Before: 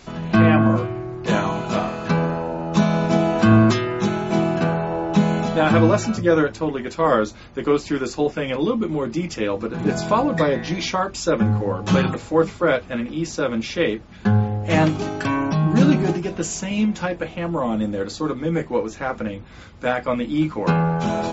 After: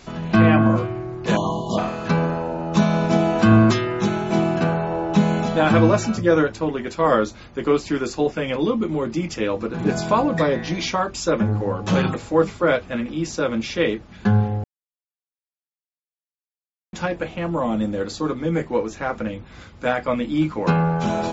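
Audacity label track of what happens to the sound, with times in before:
1.360000	1.780000	spectral delete 1200–2800 Hz
10.370000	12.040000	core saturation saturates under 360 Hz
14.640000	16.930000	mute

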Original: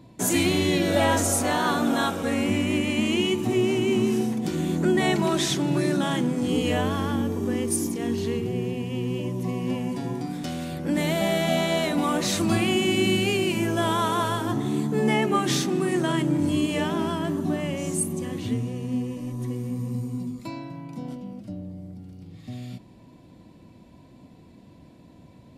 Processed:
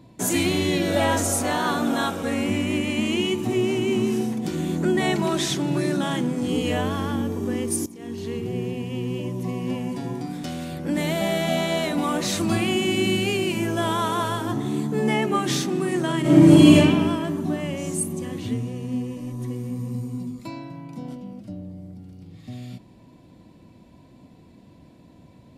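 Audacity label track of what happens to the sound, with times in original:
7.860000	8.540000	fade in, from -17 dB
16.210000	16.750000	reverb throw, RT60 1.4 s, DRR -12 dB

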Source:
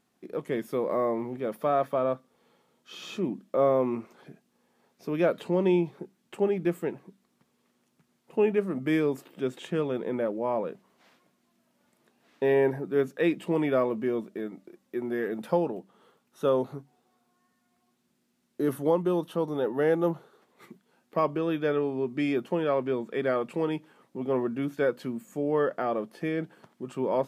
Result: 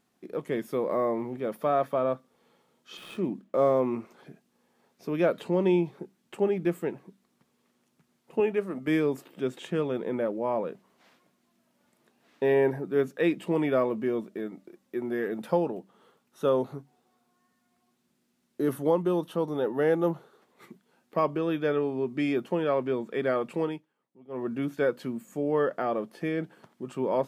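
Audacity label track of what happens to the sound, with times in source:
2.970000	3.800000	median filter over 9 samples
8.400000	8.880000	low shelf 180 Hz -11.5 dB
23.620000	24.520000	dip -20.5 dB, fades 0.24 s

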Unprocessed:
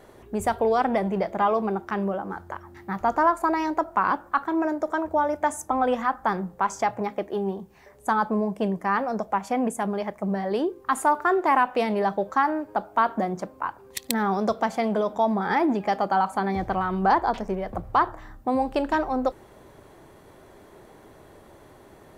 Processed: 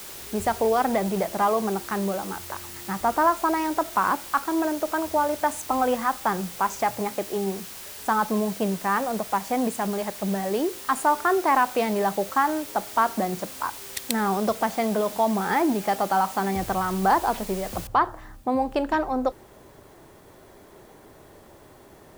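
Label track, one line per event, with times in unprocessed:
17.870000	17.870000	noise floor step -40 dB -62 dB

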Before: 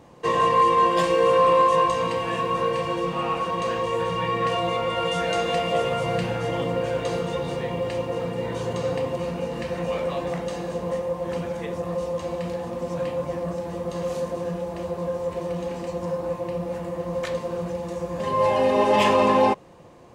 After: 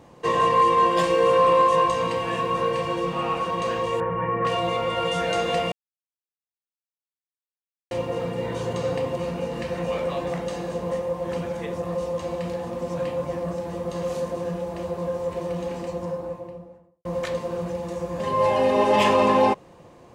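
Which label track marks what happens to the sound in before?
4.000000	4.450000	inverse Chebyshev low-pass stop band from 5000 Hz, stop band 50 dB
5.720000	7.910000	mute
15.730000	17.050000	studio fade out

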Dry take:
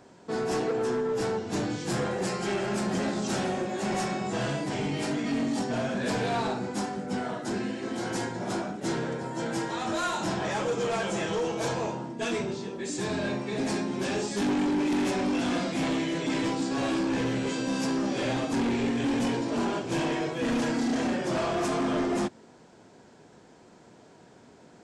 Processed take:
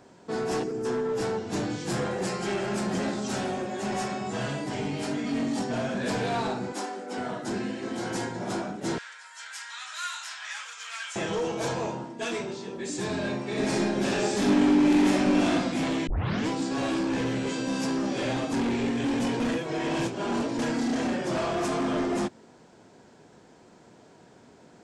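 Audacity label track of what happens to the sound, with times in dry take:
0.630000	0.850000	spectral gain 450–4600 Hz -11 dB
3.160000	5.350000	notch comb 170 Hz
6.720000	7.180000	HPF 290 Hz 24 dB/oct
8.980000	11.160000	HPF 1400 Hz 24 dB/oct
12.040000	12.680000	low shelf 200 Hz -9 dB
13.430000	15.500000	reverb throw, RT60 0.94 s, DRR -2 dB
16.070000	16.070000	tape start 0.41 s
19.400000	20.590000	reverse

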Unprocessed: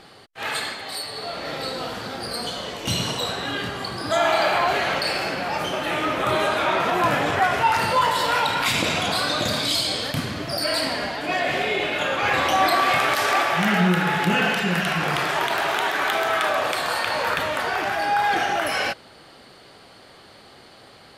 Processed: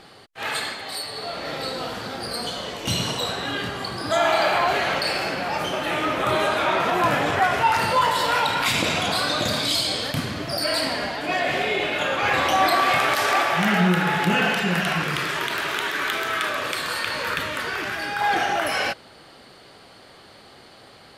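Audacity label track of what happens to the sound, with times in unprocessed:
15.020000	18.210000	bell 750 Hz -13 dB 0.69 oct

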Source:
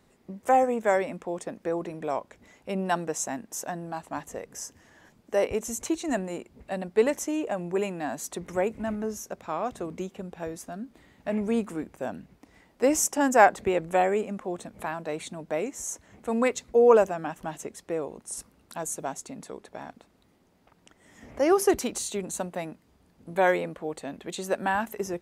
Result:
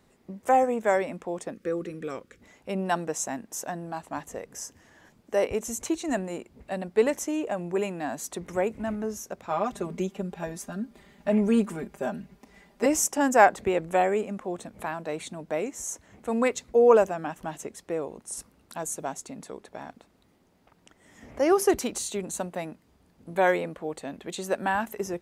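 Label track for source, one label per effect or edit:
1.530000	2.410000	spectral gain 550–1100 Hz -15 dB
9.500000	12.860000	comb 5 ms, depth 98%

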